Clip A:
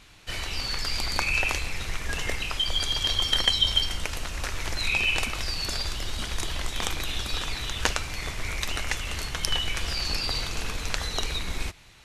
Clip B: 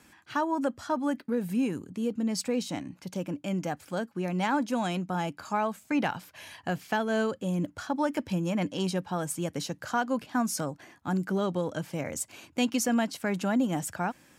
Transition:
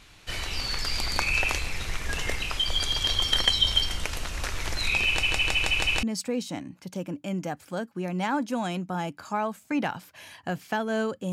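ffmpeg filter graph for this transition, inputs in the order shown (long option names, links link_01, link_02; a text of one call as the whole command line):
ffmpeg -i cue0.wav -i cue1.wav -filter_complex "[0:a]apad=whole_dur=11.32,atrim=end=11.32,asplit=6[link_01][link_02][link_03][link_04][link_05][link_06];[link_01]atrim=end=5.232[link_07];[link_02]atrim=start=5.068:end=5.232[link_08];[link_03]atrim=start=5.068:end=5.232[link_09];[link_04]atrim=start=5.068:end=5.232[link_10];[link_05]atrim=start=5.068:end=5.232[link_11];[link_06]atrim=start=5.068:end=5.232[link_12];[1:a]atrim=start=2.228:end=7.52[link_13];[link_07][link_08]acrossfade=duration=0.004:curve1=hsin:curve2=hsin[link_14];[link_14][link_09]acrossfade=duration=0.004:curve1=hsin:curve2=hsin[link_15];[link_15][link_10]acrossfade=duration=0.004:curve1=hsin:curve2=hsin[link_16];[link_16][link_11]acrossfade=duration=0.004:curve1=hsin:curve2=hsin[link_17];[link_17][link_12]acrossfade=duration=0.004:curve1=hsin:curve2=hsin[link_18];[link_18][link_13]acrossfade=duration=0.004:curve1=hsin:curve2=hsin" out.wav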